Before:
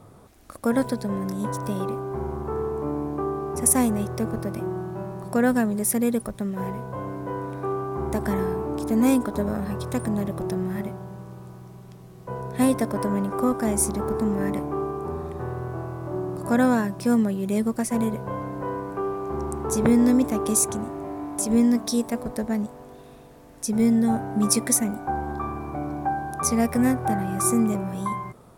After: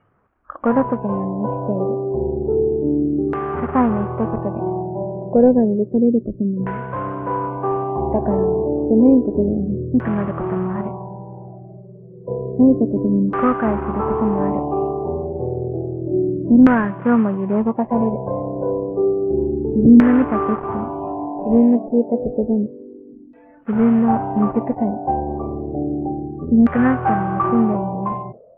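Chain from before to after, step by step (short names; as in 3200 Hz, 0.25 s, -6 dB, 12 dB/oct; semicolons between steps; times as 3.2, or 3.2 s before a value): CVSD 16 kbps; LFO low-pass saw down 0.3 Hz 280–1600 Hz; spectral noise reduction 19 dB; gain +5 dB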